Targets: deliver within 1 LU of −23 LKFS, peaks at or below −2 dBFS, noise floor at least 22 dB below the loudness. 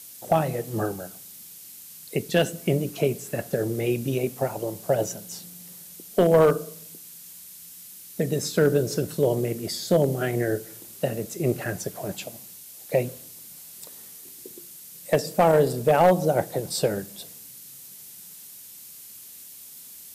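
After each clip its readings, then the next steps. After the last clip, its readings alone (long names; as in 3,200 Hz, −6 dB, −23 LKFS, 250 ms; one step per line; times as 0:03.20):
share of clipped samples 0.3%; peaks flattened at −11.0 dBFS; background noise floor −45 dBFS; target noise floor −47 dBFS; integrated loudness −24.5 LKFS; sample peak −11.0 dBFS; target loudness −23.0 LKFS
→ clipped peaks rebuilt −11 dBFS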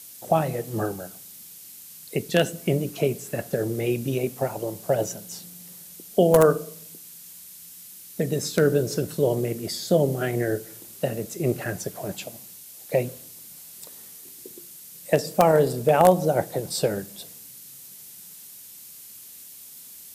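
share of clipped samples 0.0%; background noise floor −45 dBFS; target noise floor −47 dBFS
→ broadband denoise 6 dB, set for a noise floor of −45 dBFS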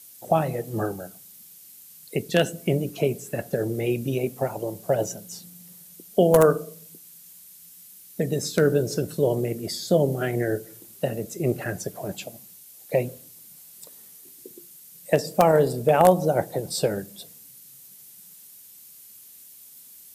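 background noise floor −48 dBFS; integrated loudness −24.5 LKFS; sample peak −2.0 dBFS; target loudness −23.0 LKFS
→ level +1.5 dB
brickwall limiter −2 dBFS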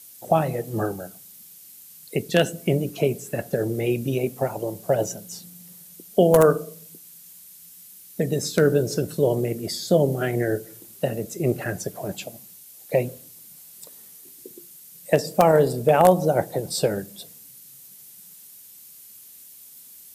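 integrated loudness −23.0 LKFS; sample peak −2.0 dBFS; background noise floor −47 dBFS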